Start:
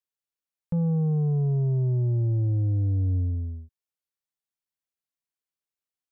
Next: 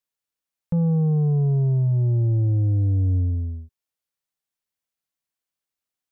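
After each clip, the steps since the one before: band-stop 380 Hz, Q 12; trim +4 dB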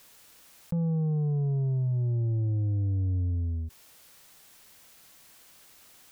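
level flattener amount 70%; trim -7.5 dB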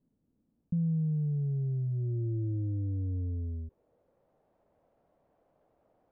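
low-pass sweep 240 Hz -> 620 Hz, 0.91–4.54 s; trim -6 dB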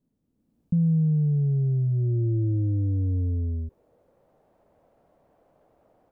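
level rider gain up to 8 dB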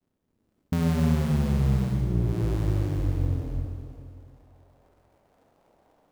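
cycle switcher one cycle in 2, muted; Schroeder reverb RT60 2.4 s, combs from 30 ms, DRR 1.5 dB

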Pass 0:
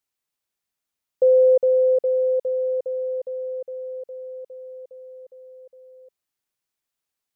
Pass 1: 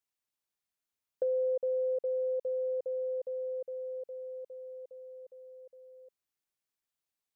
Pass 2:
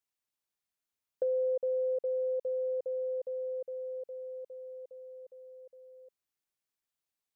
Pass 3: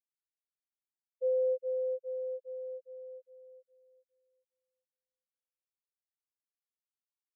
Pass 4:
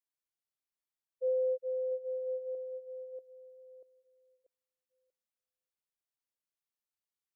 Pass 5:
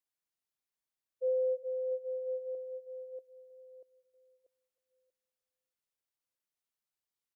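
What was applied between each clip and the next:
compression 3:1, threshold -25 dBFS, peak gain reduction 9 dB; trim -6.5 dB
no audible change
spectral contrast expander 4:1; trim -3.5 dB
chunks repeated in reverse 638 ms, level -13 dB; trim -1.5 dB
feedback delay 316 ms, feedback 51%, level -20.5 dB

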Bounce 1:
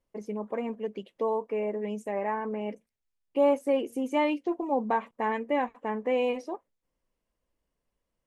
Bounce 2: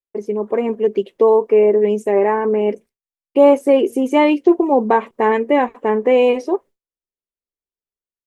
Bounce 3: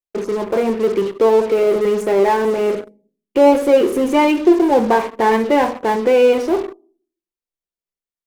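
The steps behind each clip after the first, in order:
expander -51 dBFS; peaking EQ 390 Hz +12 dB 0.38 oct; level rider gain up to 4.5 dB; trim +6.5 dB
simulated room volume 350 m³, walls furnished, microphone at 0.81 m; in parallel at -10 dB: fuzz box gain 33 dB, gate -35 dBFS; on the sum: trim -2 dB

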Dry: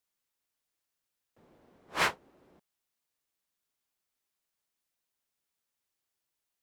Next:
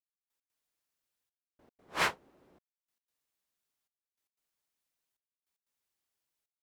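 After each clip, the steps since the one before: trance gate "...x.xxxxxxxx" 151 bpm -60 dB; trim -1.5 dB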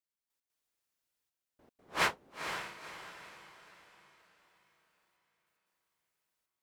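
echo that smears into a reverb 489 ms, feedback 42%, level -7 dB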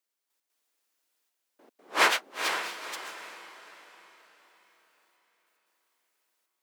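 high-pass 260 Hz 24 dB/octave; ever faster or slower copies 779 ms, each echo +7 st, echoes 3, each echo -6 dB; trim +7.5 dB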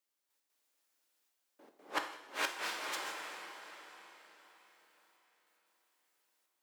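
inverted gate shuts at -18 dBFS, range -30 dB; reverberation, pre-delay 3 ms, DRR 4.5 dB; trim -2.5 dB

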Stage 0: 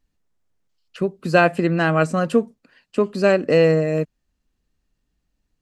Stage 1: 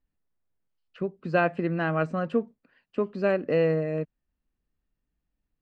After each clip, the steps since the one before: low-pass 2.7 kHz 12 dB/octave; trim -8 dB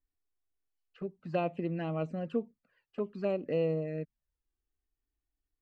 touch-sensitive flanger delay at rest 2.7 ms, full sweep at -22.5 dBFS; trim -6 dB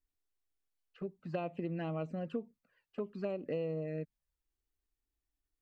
compression, threshold -31 dBFS, peak gain reduction 6 dB; trim -1.5 dB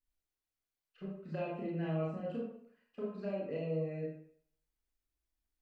reverberation RT60 0.65 s, pre-delay 25 ms, DRR -5.5 dB; trim -7 dB

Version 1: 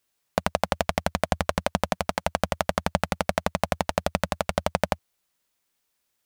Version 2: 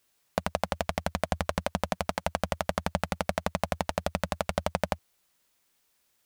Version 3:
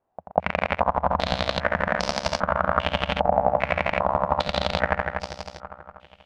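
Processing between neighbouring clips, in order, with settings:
peak limiter -13 dBFS, peak gain reduction 10.5 dB; trim +4.5 dB
backward echo that repeats 121 ms, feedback 74%, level -3 dB; pre-echo 193 ms -18 dB; step-sequenced low-pass 2.5 Hz 780–5200 Hz; trim +1.5 dB

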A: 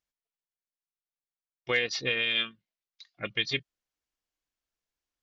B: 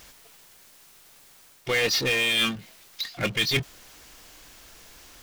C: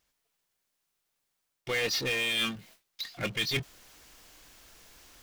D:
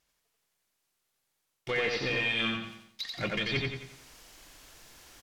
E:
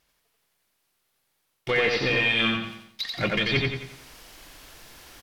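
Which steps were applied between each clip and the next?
reverse; compression, threshold -35 dBFS, peak gain reduction 13 dB; reverse; power-law waveshaper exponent 0.5; trim +8.5 dB
gate with hold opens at -43 dBFS; trim -6 dB
low-pass that closes with the level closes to 2.8 kHz, closed at -28 dBFS; on a send: feedback delay 88 ms, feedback 42%, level -3 dB; on the sum: bit-crushed delay 103 ms, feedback 35%, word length 10-bit, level -14.5 dB
peaking EQ 7 kHz -5 dB 0.7 oct; trim +7 dB

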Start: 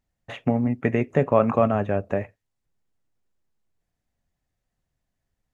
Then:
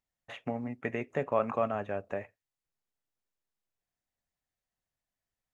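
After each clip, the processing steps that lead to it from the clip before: bass shelf 360 Hz -11 dB; trim -6.5 dB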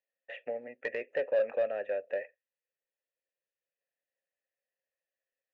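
vowel filter e; overdrive pedal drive 14 dB, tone 2.5 kHz, clips at -24 dBFS; trim +4.5 dB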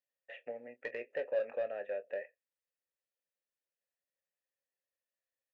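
doubling 25 ms -12 dB; trim -5.5 dB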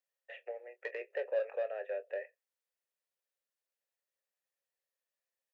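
elliptic high-pass 380 Hz, stop band 40 dB; trim +1 dB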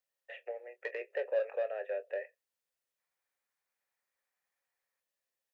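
time-frequency box 2.99–5.00 s, 700–2500 Hz +7 dB; trim +1.5 dB

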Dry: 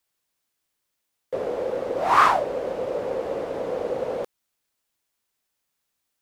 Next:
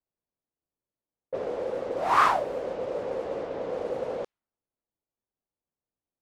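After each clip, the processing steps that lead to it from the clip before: level-controlled noise filter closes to 640 Hz, open at -22 dBFS; trim -4 dB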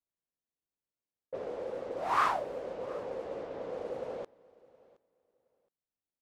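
feedback delay 719 ms, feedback 18%, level -23 dB; trim -7 dB

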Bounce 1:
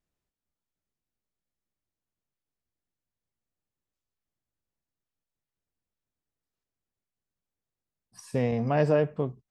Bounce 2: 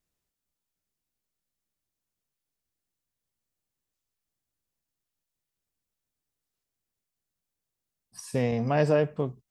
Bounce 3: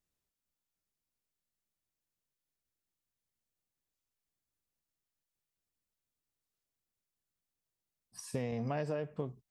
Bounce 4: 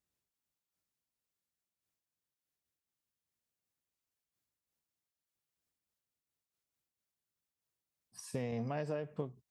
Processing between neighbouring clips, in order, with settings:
treble shelf 3.6 kHz +7.5 dB
compression 10:1, threshold -27 dBFS, peak gain reduction 10 dB; trim -4.5 dB
high-pass 56 Hz; random flutter of the level, depth 60%; trim +2 dB

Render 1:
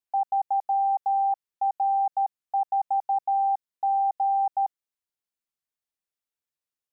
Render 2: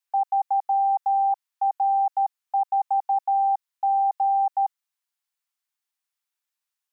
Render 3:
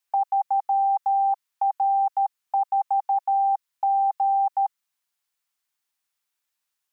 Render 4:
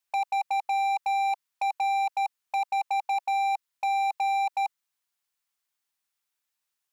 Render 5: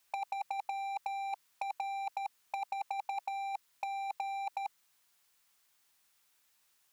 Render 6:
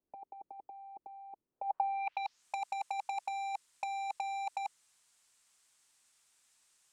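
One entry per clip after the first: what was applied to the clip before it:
high-pass 800 Hz 24 dB/octave; trim +5.5 dB
dynamic bell 740 Hz, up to -6 dB, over -37 dBFS, Q 4.6; trim +4.5 dB
wavefolder -20 dBFS; trim -2 dB
compressor with a negative ratio -33 dBFS, ratio -0.5
low-pass sweep 360 Hz -> 8.3 kHz, 1.51–2.45 s

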